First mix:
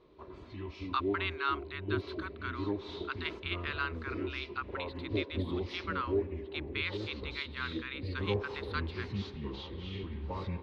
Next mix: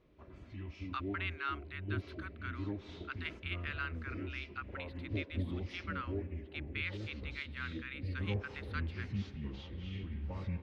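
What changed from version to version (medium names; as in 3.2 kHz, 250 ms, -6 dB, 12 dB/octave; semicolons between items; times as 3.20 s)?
master: add fifteen-band graphic EQ 400 Hz -11 dB, 1 kHz -12 dB, 4 kHz -11 dB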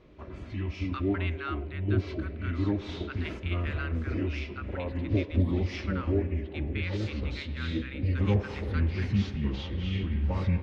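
background +10.5 dB; reverb: on, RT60 0.55 s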